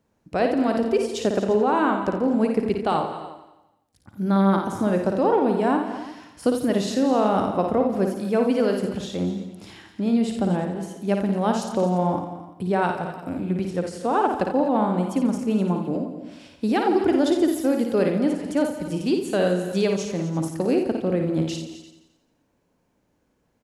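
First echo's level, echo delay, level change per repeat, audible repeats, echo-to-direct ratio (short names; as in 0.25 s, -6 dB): -5.5 dB, 56 ms, no steady repeat, 9, -3.0 dB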